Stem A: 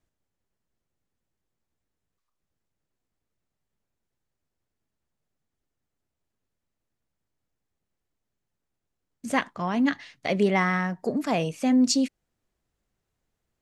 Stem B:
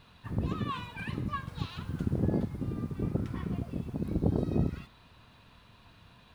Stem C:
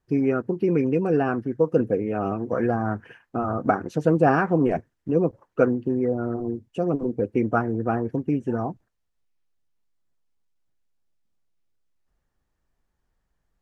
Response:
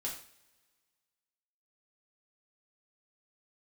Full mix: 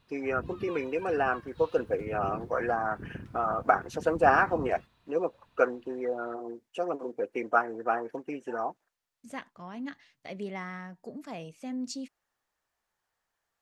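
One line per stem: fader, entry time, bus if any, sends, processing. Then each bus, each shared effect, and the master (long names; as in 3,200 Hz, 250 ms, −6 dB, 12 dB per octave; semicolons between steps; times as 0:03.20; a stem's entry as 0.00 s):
−15.0 dB, 0.00 s, no send, no processing
−10.5 dB, 0.00 s, no send, no processing
+1.5 dB, 0.00 s, no send, high-pass filter 690 Hz 12 dB per octave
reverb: not used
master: no processing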